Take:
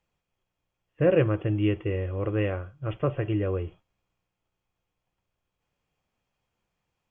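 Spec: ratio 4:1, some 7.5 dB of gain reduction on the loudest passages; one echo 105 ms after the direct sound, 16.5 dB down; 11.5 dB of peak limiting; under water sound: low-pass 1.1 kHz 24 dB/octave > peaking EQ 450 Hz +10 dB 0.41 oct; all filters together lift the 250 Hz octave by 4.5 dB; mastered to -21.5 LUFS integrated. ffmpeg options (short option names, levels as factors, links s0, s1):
-af "equalizer=f=250:t=o:g=4.5,acompressor=threshold=0.0631:ratio=4,alimiter=level_in=1.41:limit=0.0631:level=0:latency=1,volume=0.708,lowpass=f=1100:w=0.5412,lowpass=f=1100:w=1.3066,equalizer=f=450:t=o:w=0.41:g=10,aecho=1:1:105:0.15,volume=3.76"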